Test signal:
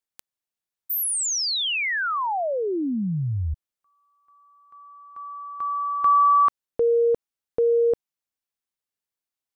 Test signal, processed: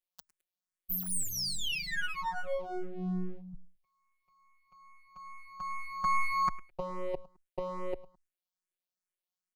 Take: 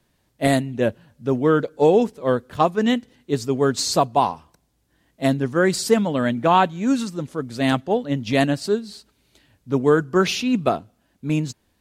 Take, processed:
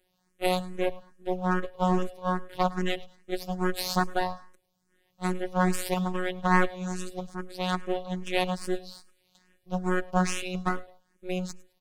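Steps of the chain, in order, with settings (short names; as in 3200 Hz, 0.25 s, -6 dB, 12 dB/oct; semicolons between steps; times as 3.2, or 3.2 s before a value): robotiser 182 Hz; half-wave rectifier; on a send: feedback echo 0.106 s, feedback 31%, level -20 dB; on the sum: endless phaser +2.4 Hz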